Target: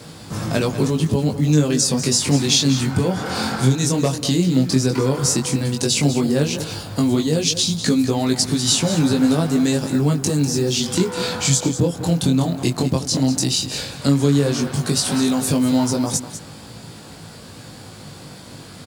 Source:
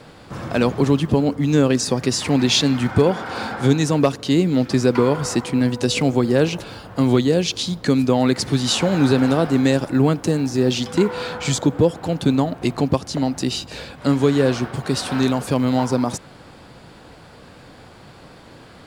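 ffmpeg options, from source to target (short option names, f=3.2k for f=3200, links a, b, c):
-filter_complex "[0:a]highpass=89,bass=f=250:g=8,treble=f=4k:g=14,acompressor=threshold=-18dB:ratio=2.5,flanger=delay=18.5:depth=4.6:speed=0.12,asplit=2[a][b];[b]aecho=0:1:197:0.251[c];[a][c]amix=inputs=2:normalize=0,volume=4dB"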